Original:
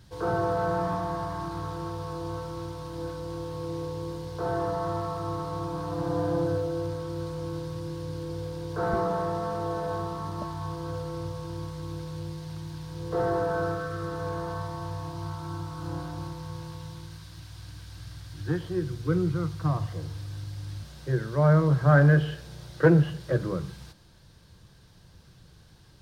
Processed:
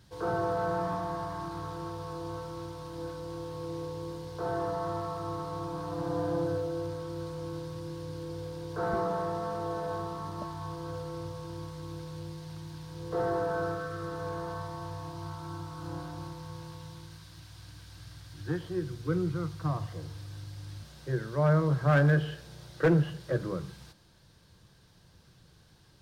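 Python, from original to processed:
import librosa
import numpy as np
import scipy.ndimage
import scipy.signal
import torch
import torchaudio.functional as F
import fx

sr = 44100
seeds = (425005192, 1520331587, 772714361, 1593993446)

y = fx.low_shelf(x, sr, hz=100.0, db=-6.0)
y = np.clip(y, -10.0 ** (-14.0 / 20.0), 10.0 ** (-14.0 / 20.0))
y = y * librosa.db_to_amplitude(-3.0)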